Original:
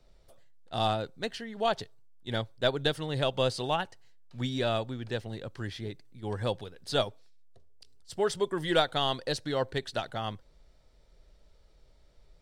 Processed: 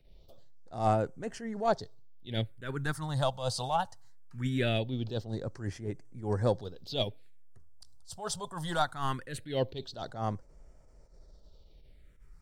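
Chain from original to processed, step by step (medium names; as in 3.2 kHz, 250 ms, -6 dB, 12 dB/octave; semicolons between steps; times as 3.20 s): phase shifter stages 4, 0.21 Hz, lowest notch 340–3700 Hz; in parallel at -10.5 dB: saturation -23.5 dBFS, distortion -16 dB; on the sum: attacks held to a fixed rise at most 140 dB/s; trim +1.5 dB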